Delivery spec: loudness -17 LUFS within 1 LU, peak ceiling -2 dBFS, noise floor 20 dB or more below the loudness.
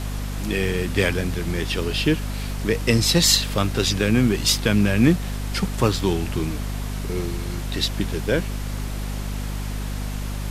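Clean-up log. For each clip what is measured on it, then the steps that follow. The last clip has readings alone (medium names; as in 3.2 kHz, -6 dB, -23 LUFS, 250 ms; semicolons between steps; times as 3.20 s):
hum 50 Hz; highest harmonic 250 Hz; hum level -25 dBFS; noise floor -28 dBFS; noise floor target -43 dBFS; loudness -22.5 LUFS; peak level -3.0 dBFS; loudness target -17.0 LUFS
-> de-hum 50 Hz, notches 5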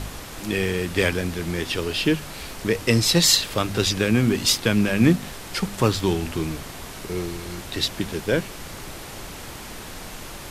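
hum not found; noise floor -38 dBFS; noise floor target -43 dBFS
-> noise print and reduce 6 dB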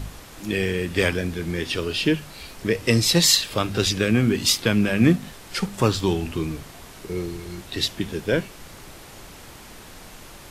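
noise floor -43 dBFS; loudness -22.5 LUFS; peak level -3.0 dBFS; loudness target -17.0 LUFS
-> trim +5.5 dB; peak limiter -2 dBFS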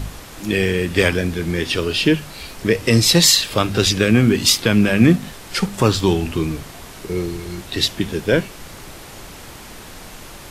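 loudness -17.5 LUFS; peak level -2.0 dBFS; noise floor -38 dBFS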